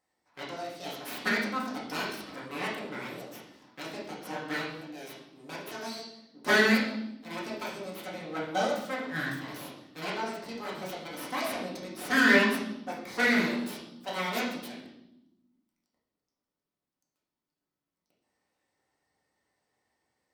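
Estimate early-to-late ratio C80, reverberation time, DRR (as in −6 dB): 7.0 dB, 0.90 s, −6.0 dB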